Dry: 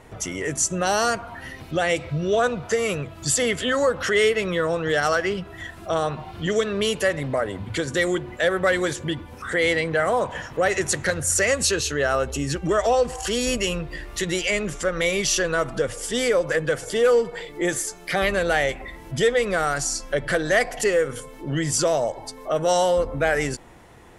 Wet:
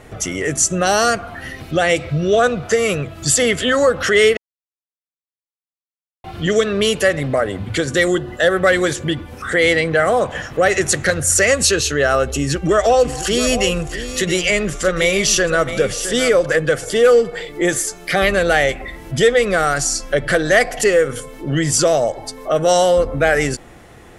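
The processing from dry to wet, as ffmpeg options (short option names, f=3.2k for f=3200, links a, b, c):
-filter_complex "[0:a]asettb=1/sr,asplit=3[a][b][c];[a]atrim=end=8.084[d];[b]atrim=start=8.08:end=8.53,asetpts=PTS-STARTPTS,afade=t=in:d=0.004:c=qsin,afade=t=out:st=0.446:d=0.004:c=qsin,asuperstop=centerf=2300:order=4:qfactor=4.6[e];[c]atrim=start=8.526[f];[d][e]acrossfade=d=0.004:c1=hsin:c2=qsin[g];[g][f]acrossfade=d=0.004:c1=qsin:c2=hsin,asettb=1/sr,asplit=3[h][i][j];[h]atrim=end=12.234[k];[i]atrim=start=12.23:end=16.46,asetpts=PTS-STARTPTS,afade=t=in:d=0.004:c=qsin,afade=t=out:st=4.226:d=0.004:c=qsin,aecho=1:1:667:0.266,atrim=end_sample=186543[l];[j]atrim=start=16.456[m];[k][l]acrossfade=d=0.004:c1=hsin:c2=qsin[n];[n][m]acrossfade=d=0.004:c1=qsin:c2=hsin,asplit=3[o][p][q];[o]atrim=end=4.37,asetpts=PTS-STARTPTS,afade=t=out:st=4.366:d=0.004:c=hsin[r];[p]atrim=start=4.37:end=6.24,asetpts=PTS-STARTPTS,volume=0[s];[q]atrim=start=6.24,asetpts=PTS-STARTPTS,afade=t=in:d=0.004:c=hsin[t];[r][s][t]concat=n=3:v=0:a=1,bandreject=f=950:w=6,volume=6.5dB"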